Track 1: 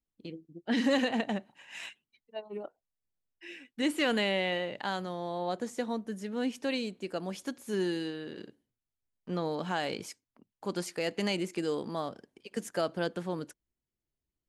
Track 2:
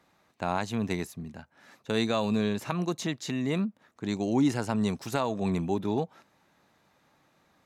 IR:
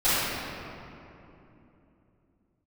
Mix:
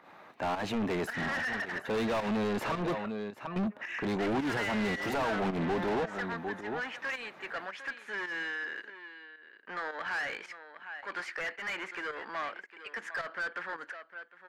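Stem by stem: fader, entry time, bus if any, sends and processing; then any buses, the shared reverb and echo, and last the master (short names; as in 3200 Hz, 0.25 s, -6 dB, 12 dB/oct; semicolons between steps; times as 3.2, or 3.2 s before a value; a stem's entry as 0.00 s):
-5.5 dB, 0.40 s, no send, echo send -16.5 dB, soft clip -30 dBFS, distortion -10 dB; band-pass 1700 Hz, Q 3.2
-9.0 dB, 0.00 s, muted 2.97–3.56, no send, echo send -17.5 dB, bell 6800 Hz -10.5 dB 1.8 oct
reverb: off
echo: echo 0.754 s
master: overdrive pedal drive 34 dB, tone 2000 Hz, clips at -23 dBFS; pump 109 bpm, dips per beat 1, -10 dB, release 0.139 s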